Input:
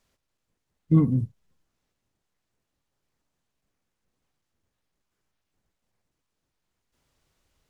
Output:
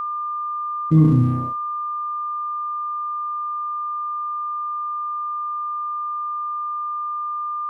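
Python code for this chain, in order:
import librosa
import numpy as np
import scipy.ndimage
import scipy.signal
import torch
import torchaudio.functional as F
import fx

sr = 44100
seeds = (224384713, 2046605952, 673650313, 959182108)

y = fx.room_flutter(x, sr, wall_m=5.5, rt60_s=0.72)
y = np.sign(y) * np.maximum(np.abs(y) - 10.0 ** (-43.5 / 20.0), 0.0)
y = y + 10.0 ** (-39.0 / 20.0) * np.sin(2.0 * np.pi * 1200.0 * np.arange(len(y)) / sr)
y = fx.env_flatten(y, sr, amount_pct=50)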